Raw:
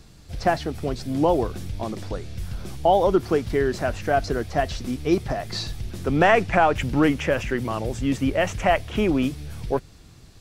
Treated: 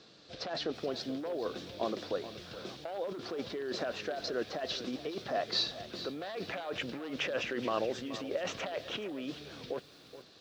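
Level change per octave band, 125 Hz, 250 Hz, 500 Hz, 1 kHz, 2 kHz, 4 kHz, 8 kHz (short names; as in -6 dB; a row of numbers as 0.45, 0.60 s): -22.5, -16.0, -13.0, -17.5, -13.5, -2.5, -10.0 dB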